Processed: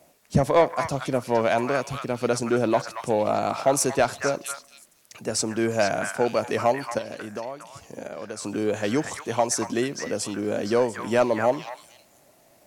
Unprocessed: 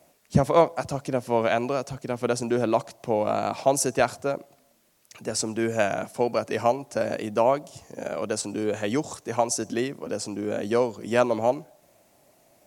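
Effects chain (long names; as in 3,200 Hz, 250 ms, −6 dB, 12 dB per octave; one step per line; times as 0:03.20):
0:06.98–0:08.42: downward compressor 4 to 1, threshold −35 dBFS, peak gain reduction 16.5 dB
soft clipping −11 dBFS, distortion −18 dB
echo through a band-pass that steps 231 ms, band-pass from 1,500 Hz, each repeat 1.4 octaves, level −1 dB
level +2 dB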